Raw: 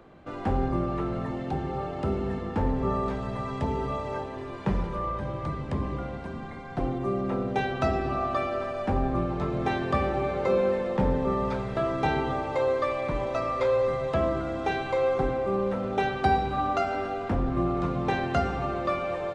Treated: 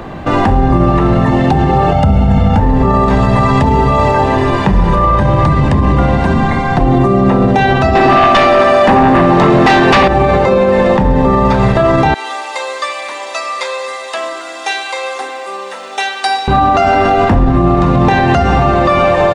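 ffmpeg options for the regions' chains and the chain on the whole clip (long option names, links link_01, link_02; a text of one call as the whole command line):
ffmpeg -i in.wav -filter_complex "[0:a]asettb=1/sr,asplit=3[link_01][link_02][link_03];[link_01]atrim=end=1.924[link_04];[link_02]atrim=start=1.92:end=2.6,asetpts=PTS-STARTPTS,afade=type=in:duration=0.004:curve=qsin,afade=type=out:start_time=0.676:duration=0.004:curve=qsin,lowshelf=frequency=320:gain=5,aecho=1:1:1.4:0.89,atrim=end_sample=29988[link_05];[link_03]atrim=start=2.596[link_06];[link_04][link_05]acrossfade=duration=0.004:curve1=hsin:curve2=qsin[link_07];[link_07][link_06]acrossfade=duration=0.004:curve1=qsin:curve2=hsin,asettb=1/sr,asplit=3[link_08][link_09][link_10];[link_08]atrim=end=7.954[link_11];[link_09]atrim=start=7.95:end=10.08,asetpts=PTS-STARTPTS,afade=type=in:duration=0.004:curve=qsin,afade=type=out:start_time=2.126:duration=0.004:curve=qsin,highpass=200,aeval=exprs='0.178*sin(PI/2*2.82*val(0)/0.178)':channel_layout=same[link_12];[link_10]atrim=start=10.076[link_13];[link_11][link_12]acrossfade=duration=0.004:curve1=hsin:curve2=qsin[link_14];[link_14][link_13]acrossfade=duration=0.004:curve1=qsin:curve2=hsin,asettb=1/sr,asplit=3[link_15][link_16][link_17];[link_15]atrim=end=12.144[link_18];[link_16]atrim=start=12.14:end=16.48,asetpts=PTS-STARTPTS,afade=type=in:duration=0.004:curve=qsin,afade=type=out:start_time=4.336:duration=0.004:curve=qsin,highpass=frequency=280:width=0.5412,highpass=frequency=280:width=1.3066,aderivative[link_19];[link_17]atrim=start=16.476[link_20];[link_18][link_19]acrossfade=duration=0.004:curve1=hsin:curve2=qsin[link_21];[link_21][link_20]acrossfade=duration=0.004:curve1=qsin:curve2=hsin,aecho=1:1:1.1:0.31,acompressor=threshold=-28dB:ratio=6,alimiter=level_in=27dB:limit=-1dB:release=50:level=0:latency=1,volume=-1dB" out.wav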